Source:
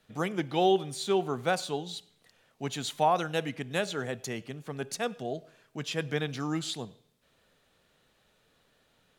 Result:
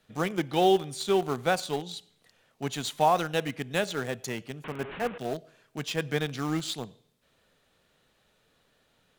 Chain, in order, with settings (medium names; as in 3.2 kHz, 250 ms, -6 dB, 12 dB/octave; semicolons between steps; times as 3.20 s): 4.64–5.18 s: one-bit delta coder 16 kbps, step -34 dBFS; in parallel at -11 dB: bit crusher 5-bit